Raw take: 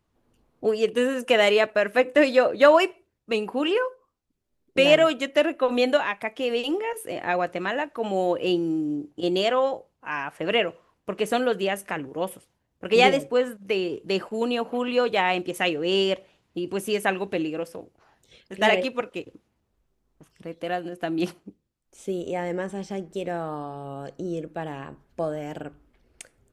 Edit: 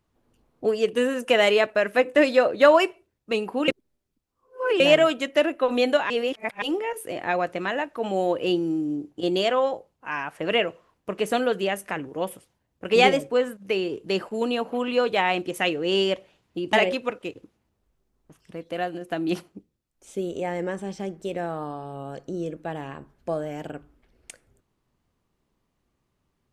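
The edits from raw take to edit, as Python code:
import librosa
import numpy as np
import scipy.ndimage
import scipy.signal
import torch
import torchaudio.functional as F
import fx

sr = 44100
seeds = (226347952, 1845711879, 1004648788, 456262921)

y = fx.edit(x, sr, fx.reverse_span(start_s=3.68, length_s=1.12),
    fx.reverse_span(start_s=6.1, length_s=0.52),
    fx.cut(start_s=16.73, length_s=1.91), tone=tone)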